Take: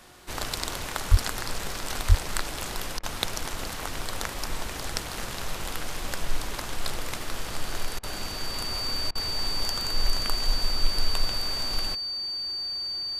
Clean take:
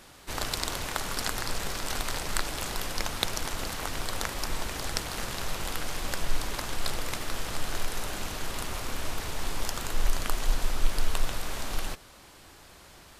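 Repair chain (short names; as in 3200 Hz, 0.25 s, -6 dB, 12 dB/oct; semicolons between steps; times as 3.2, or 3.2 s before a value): de-hum 360.2 Hz, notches 5; notch 4600 Hz, Q 30; 1.1–1.22 HPF 140 Hz 24 dB/oct; 2.08–2.2 HPF 140 Hz 24 dB/oct; interpolate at 2.99/7.99/9.11, 41 ms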